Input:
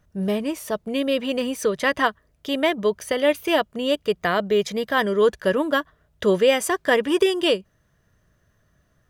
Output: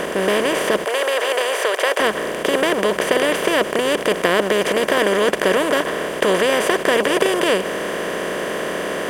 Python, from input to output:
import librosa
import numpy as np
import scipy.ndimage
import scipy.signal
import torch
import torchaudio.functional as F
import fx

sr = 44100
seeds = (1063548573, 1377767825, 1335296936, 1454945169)

y = fx.bin_compress(x, sr, power=0.2)
y = fx.highpass(y, sr, hz=460.0, slope=24, at=(0.85, 2.0))
y = y * librosa.db_to_amplitude(-5.5)